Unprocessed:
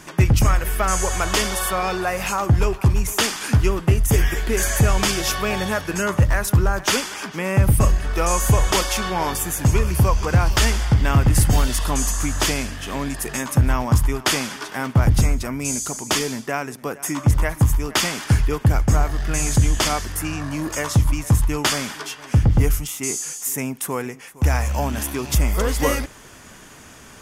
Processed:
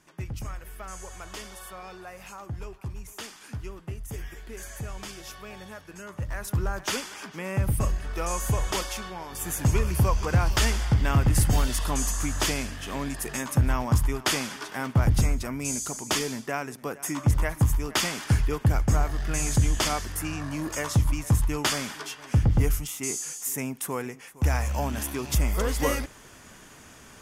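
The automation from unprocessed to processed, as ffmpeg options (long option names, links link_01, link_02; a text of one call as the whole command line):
ffmpeg -i in.wav -af "volume=3dB,afade=type=in:start_time=6.12:duration=0.52:silence=0.316228,afade=type=out:start_time=8.82:duration=0.47:silence=0.375837,afade=type=in:start_time=9.29:duration=0.21:silence=0.237137" out.wav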